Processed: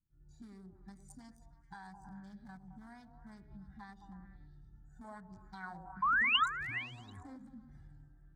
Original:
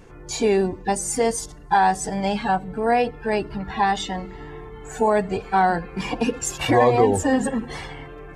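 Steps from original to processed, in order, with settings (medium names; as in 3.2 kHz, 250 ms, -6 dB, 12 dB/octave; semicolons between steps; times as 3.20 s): local Wiener filter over 41 samples; expander -36 dBFS; amplifier tone stack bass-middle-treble 6-0-2; harmonic-percussive split harmonic +7 dB; bass shelf 140 Hz -8.5 dB; compression 6:1, threshold -46 dBFS, peak gain reduction 13.5 dB; 6.02–6.46 s: painted sound rise 1–4 kHz -29 dBFS; touch-sensitive phaser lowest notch 440 Hz, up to 1.3 kHz, full sweep at -17.5 dBFS; repeats whose band climbs or falls 107 ms, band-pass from 410 Hz, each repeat 0.7 oct, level -2.5 dB; 5.04–7.37 s: sweeping bell 1.3 Hz 530–7700 Hz +14 dB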